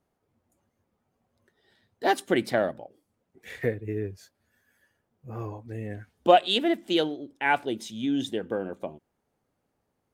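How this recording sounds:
background noise floor −78 dBFS
spectral slope −3.0 dB per octave

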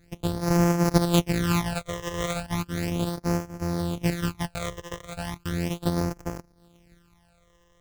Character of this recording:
a buzz of ramps at a fixed pitch in blocks of 256 samples
phaser sweep stages 12, 0.36 Hz, lowest notch 240–3,600 Hz
AAC

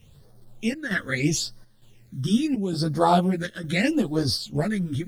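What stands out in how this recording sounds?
a quantiser's noise floor 10 bits, dither none
phaser sweep stages 12, 0.77 Hz, lowest notch 770–2,600 Hz
chopped level 1.1 Hz, depth 60%, duty 80%
a shimmering, thickened sound

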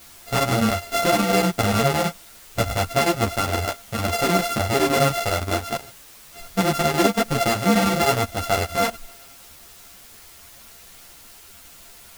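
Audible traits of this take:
a buzz of ramps at a fixed pitch in blocks of 64 samples
chopped level 9.8 Hz, depth 60%, duty 80%
a quantiser's noise floor 8 bits, dither triangular
a shimmering, thickened sound

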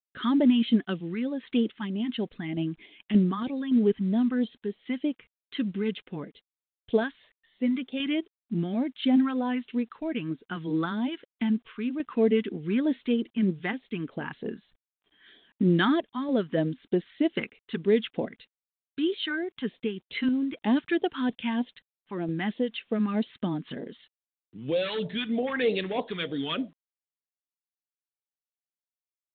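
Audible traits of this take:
phaser sweep stages 2, 3.2 Hz, lowest notch 560–1,400 Hz
a quantiser's noise floor 12 bits, dither none
sample-and-hold tremolo
mu-law

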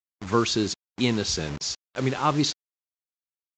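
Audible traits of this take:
a quantiser's noise floor 6 bits, dither none
Ogg Vorbis

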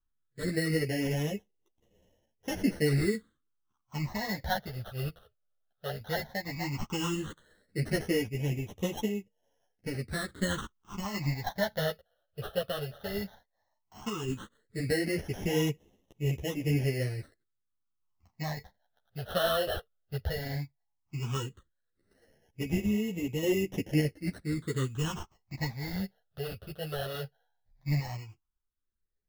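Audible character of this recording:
aliases and images of a low sample rate 2,400 Hz, jitter 0%
phaser sweep stages 8, 0.14 Hz, lowest notch 280–1,400 Hz
sample-and-hold tremolo 3.5 Hz
a shimmering, thickened sound

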